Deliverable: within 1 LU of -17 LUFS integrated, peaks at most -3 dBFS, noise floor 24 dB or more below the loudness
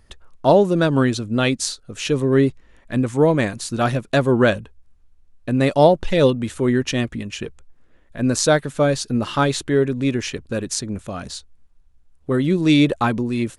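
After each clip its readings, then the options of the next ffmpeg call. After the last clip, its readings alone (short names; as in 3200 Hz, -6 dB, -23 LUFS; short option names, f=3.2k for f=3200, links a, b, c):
loudness -19.5 LUFS; peak -2.0 dBFS; loudness target -17.0 LUFS
-> -af "volume=2.5dB,alimiter=limit=-3dB:level=0:latency=1"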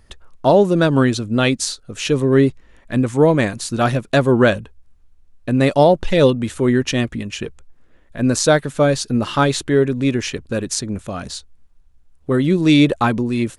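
loudness -17.0 LUFS; peak -3.0 dBFS; noise floor -51 dBFS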